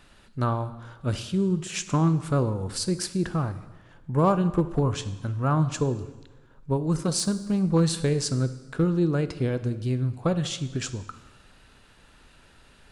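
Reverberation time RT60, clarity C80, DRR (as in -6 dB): 1.2 s, 15.5 dB, 11.5 dB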